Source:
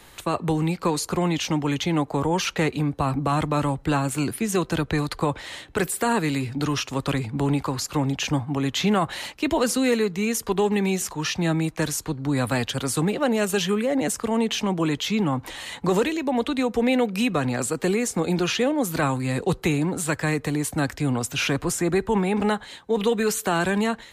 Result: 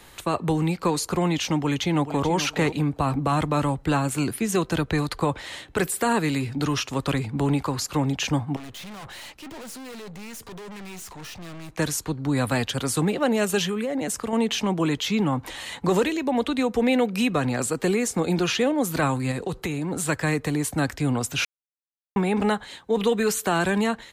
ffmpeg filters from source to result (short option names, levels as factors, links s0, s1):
-filter_complex "[0:a]asplit=2[s0][s1];[s1]afade=t=in:st=1.52:d=0.01,afade=t=out:st=2.29:d=0.01,aecho=0:1:430|860|1290:0.281838|0.0704596|0.0176149[s2];[s0][s2]amix=inputs=2:normalize=0,asettb=1/sr,asplit=3[s3][s4][s5];[s3]atrim=end=8.564[s6];[s4]atrim=start=8.56:end=11.76,asetpts=PTS-STARTPTS,afade=t=in:d=0.004:c=qsin,afade=t=out:st=3.196:d=0.004:c=qsin,aeval=exprs='(tanh(79.4*val(0)+0.3)-tanh(0.3))/79.4':c=same[s7];[s5]atrim=start=11.756[s8];[s6][s7]acrossfade=d=0.004:c1=hsin:c2=qsin[s9];[s9][s8]acrossfade=d=0.004:c1=qsin:c2=hsin,asettb=1/sr,asplit=3[s10][s11][s12];[s10]atrim=end=13.664[s13];[s11]atrim=start=13.66:end=14.33,asetpts=PTS-STARTPTS,afade=t=in:d=0.004:c=qsin,afade=t=out:st=0.666:d=0.004:c=qsin,acompressor=threshold=0.0708:ratio=6:attack=3.2:release=140:knee=1:detection=peak[s14];[s12]atrim=start=14.326[s15];[s13][s14]acrossfade=d=0.004:c1=hsin:c2=qsin[s16];[s16][s15]acrossfade=d=0.004:c1=qsin:c2=hsin,asettb=1/sr,asplit=3[s17][s18][s19];[s17]atrim=end=19.314[s20];[s18]atrim=start=19.31:end=19.91,asetpts=PTS-STARTPTS,afade=t=in:d=0.004:c=qsin,afade=t=out:st=0.596:d=0.004:c=qsin,acompressor=threshold=0.0631:ratio=5:attack=3.2:release=140:knee=1:detection=peak[s21];[s19]atrim=start=19.906[s22];[s20][s21]acrossfade=d=0.004:c1=hsin:c2=qsin[s23];[s23][s22]acrossfade=d=0.004:c1=qsin:c2=hsin,asplit=3[s24][s25][s26];[s24]atrim=end=21.45,asetpts=PTS-STARTPTS,afade=t=out:st=21.446:d=0.004:c=hsin[s27];[s25]atrim=start=21.45:end=22.16,asetpts=PTS-STARTPTS,volume=0[s28];[s26]atrim=start=22.16,asetpts=PTS-STARTPTS,afade=t=in:d=0.004:c=hsin[s29];[s27][s28][s29]concat=n=3:v=0:a=1"